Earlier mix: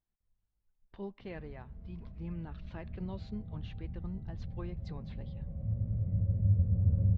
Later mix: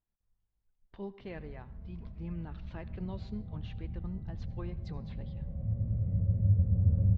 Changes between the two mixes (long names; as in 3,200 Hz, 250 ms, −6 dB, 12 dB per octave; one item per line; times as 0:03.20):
speech: send on
background: send +8.5 dB